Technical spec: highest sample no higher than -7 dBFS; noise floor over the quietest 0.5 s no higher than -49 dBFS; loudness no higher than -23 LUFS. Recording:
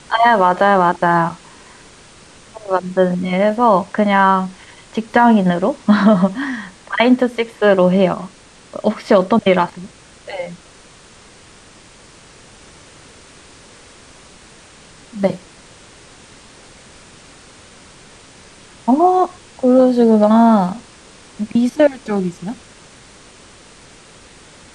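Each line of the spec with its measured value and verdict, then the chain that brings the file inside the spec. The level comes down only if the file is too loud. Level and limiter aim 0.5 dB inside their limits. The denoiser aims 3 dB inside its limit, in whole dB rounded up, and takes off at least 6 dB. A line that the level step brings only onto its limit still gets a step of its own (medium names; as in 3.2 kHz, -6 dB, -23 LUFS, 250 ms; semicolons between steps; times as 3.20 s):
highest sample -1.5 dBFS: fail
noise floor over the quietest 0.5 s -44 dBFS: fail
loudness -15.0 LUFS: fail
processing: trim -8.5 dB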